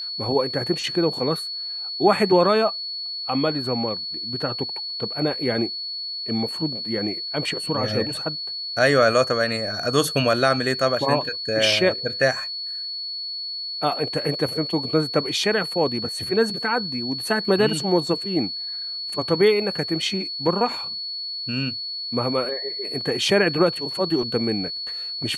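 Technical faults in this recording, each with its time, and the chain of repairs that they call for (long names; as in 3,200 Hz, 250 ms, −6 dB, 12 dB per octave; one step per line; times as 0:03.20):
whistle 4,400 Hz −28 dBFS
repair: notch filter 4,400 Hz, Q 30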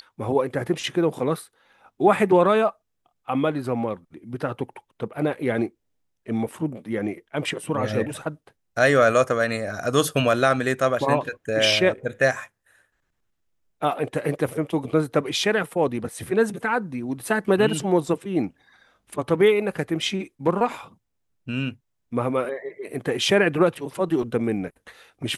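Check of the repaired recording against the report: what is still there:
none of them is left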